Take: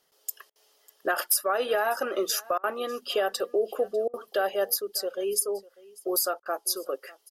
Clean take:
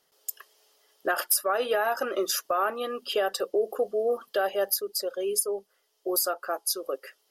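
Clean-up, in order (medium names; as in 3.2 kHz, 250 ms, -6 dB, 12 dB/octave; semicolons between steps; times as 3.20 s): interpolate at 0.50/2.58/4.08/6.40 s, 55 ms; inverse comb 597 ms -22.5 dB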